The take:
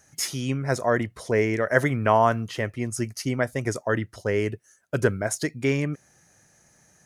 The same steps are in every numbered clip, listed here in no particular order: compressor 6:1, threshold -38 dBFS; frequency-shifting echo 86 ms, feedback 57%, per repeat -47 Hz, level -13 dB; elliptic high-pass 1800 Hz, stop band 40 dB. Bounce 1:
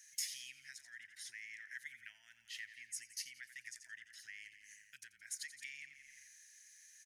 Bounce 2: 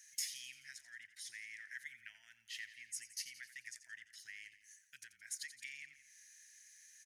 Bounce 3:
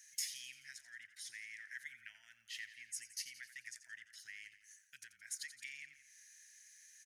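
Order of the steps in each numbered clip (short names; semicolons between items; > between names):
frequency-shifting echo > compressor > elliptic high-pass; compressor > frequency-shifting echo > elliptic high-pass; compressor > elliptic high-pass > frequency-shifting echo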